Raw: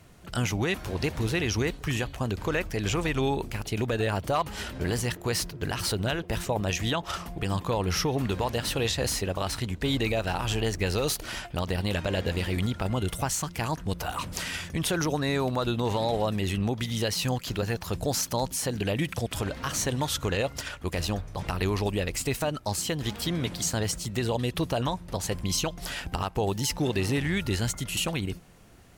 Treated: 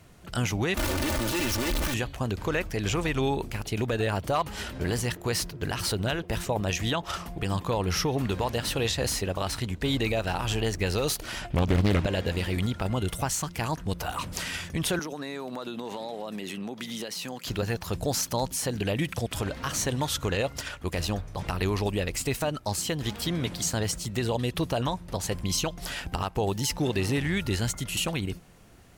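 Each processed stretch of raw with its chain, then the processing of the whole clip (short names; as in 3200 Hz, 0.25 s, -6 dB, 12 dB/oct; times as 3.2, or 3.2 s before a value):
0.77–1.94 infinite clipping + comb 3.4 ms, depth 68%
11.41–12.06 low shelf 400 Hz +8.5 dB + Doppler distortion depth 0.77 ms
14.99–17.45 HPF 180 Hz 24 dB/oct + compressor, threshold -31 dBFS
whole clip: dry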